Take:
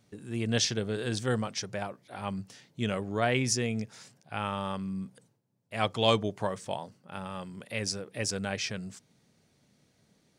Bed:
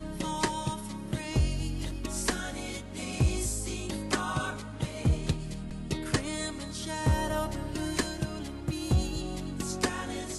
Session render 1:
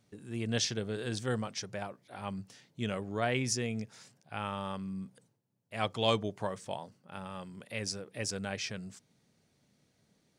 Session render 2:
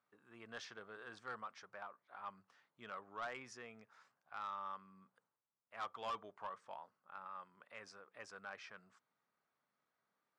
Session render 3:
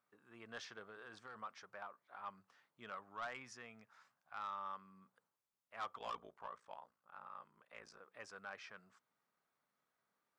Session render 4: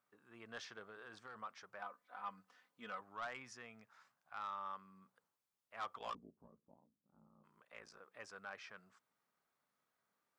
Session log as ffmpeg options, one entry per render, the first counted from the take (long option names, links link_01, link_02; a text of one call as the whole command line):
ffmpeg -i in.wav -af "volume=-4dB" out.wav
ffmpeg -i in.wav -af "bandpass=frequency=1200:width_type=q:width=3.2:csg=0,asoftclip=type=tanh:threshold=-36.5dB" out.wav
ffmpeg -i in.wav -filter_complex "[0:a]asettb=1/sr,asplit=3[link_01][link_02][link_03];[link_01]atrim=end=0.874[link_04];[link_02]atrim=start=0.87:end=1.36,asetpts=PTS-STARTPTS,afade=type=in:duration=0.004:curve=qsin,afade=type=out:start_time=0.486:duration=0.004:curve=qsin,acompressor=threshold=-49dB:ratio=6:attack=3.2:release=140:knee=1:detection=peak[link_05];[link_03]atrim=start=1.356[link_06];[link_04][link_05]acrossfade=duration=0.004:curve1=hsin:curve2=qsin[link_07];[link_07][link_06]acrossfade=duration=0.004:curve1=qsin:curve2=hsin,asettb=1/sr,asplit=3[link_08][link_09][link_10];[link_08]atrim=end=2.954[link_11];[link_09]atrim=start=2.95:end=4.37,asetpts=PTS-STARTPTS,afade=type=in:duration=0.004:curve=qsin,afade=type=out:start_time=1.416:duration=0.004:curve=qsin,equalizer=frequency=410:width_type=o:width=0.78:gain=-6[link_12];[link_10]atrim=start=4.366[link_13];[link_11][link_12]acrossfade=duration=0.004:curve1=hsin:curve2=qsin[link_14];[link_14][link_13]acrossfade=duration=0.004:curve1=qsin:curve2=hsin,asplit=3[link_15][link_16][link_17];[link_15]afade=type=out:start_time=5.98:duration=0.02[link_18];[link_16]aeval=exprs='val(0)*sin(2*PI*29*n/s)':channel_layout=same,afade=type=in:start_time=5.98:duration=0.02,afade=type=out:start_time=7.99:duration=0.02[link_19];[link_17]afade=type=in:start_time=7.99:duration=0.02[link_20];[link_18][link_19][link_20]amix=inputs=3:normalize=0" out.wav
ffmpeg -i in.wav -filter_complex "[0:a]asettb=1/sr,asplit=3[link_01][link_02][link_03];[link_01]atrim=end=1.794[link_04];[link_02]atrim=start=1.79:end=3.01,asetpts=PTS-STARTPTS,afade=type=in:duration=0.004:curve=qsin,afade=type=out:start_time=1.216:duration=0.004:curve=qsin,aecho=1:1:4:0.76,atrim=end_sample=53802[link_05];[link_03]atrim=start=3.006[link_06];[link_04][link_05]acrossfade=duration=0.004:curve1=hsin:curve2=qsin[link_07];[link_07][link_06]acrossfade=duration=0.004:curve1=qsin:curve2=hsin,asplit=3[link_08][link_09][link_10];[link_08]afade=type=out:start_time=6.13:duration=0.02[link_11];[link_09]lowpass=frequency=250:width_type=q:width=2.4,afade=type=in:start_time=6.13:duration=0.02,afade=type=out:start_time=7.43:duration=0.02[link_12];[link_10]afade=type=in:start_time=7.43:duration=0.02[link_13];[link_11][link_12][link_13]amix=inputs=3:normalize=0" out.wav